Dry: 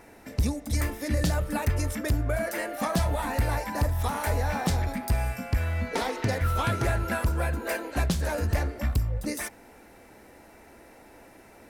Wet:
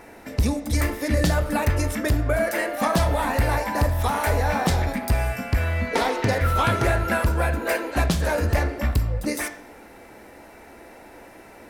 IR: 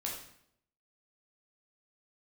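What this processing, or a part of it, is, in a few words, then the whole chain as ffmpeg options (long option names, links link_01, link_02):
filtered reverb send: -filter_complex "[0:a]asplit=2[link_01][link_02];[link_02]highpass=220,lowpass=4800[link_03];[1:a]atrim=start_sample=2205[link_04];[link_03][link_04]afir=irnorm=-1:irlink=0,volume=-6.5dB[link_05];[link_01][link_05]amix=inputs=2:normalize=0,volume=4dB"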